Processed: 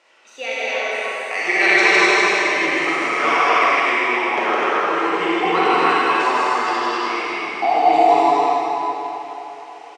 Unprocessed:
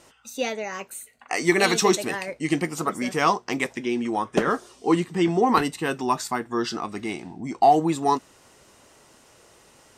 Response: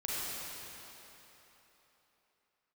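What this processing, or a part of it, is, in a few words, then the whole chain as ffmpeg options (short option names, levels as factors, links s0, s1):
station announcement: -filter_complex "[0:a]highpass=500,lowpass=4100,equalizer=f=230:t=o:w=0.4:g=-5,equalizer=f=2300:t=o:w=0.57:g=7,aecho=1:1:160.3|253.6:0.794|0.794[s0];[1:a]atrim=start_sample=2205[s1];[s0][s1]afir=irnorm=-1:irlink=0"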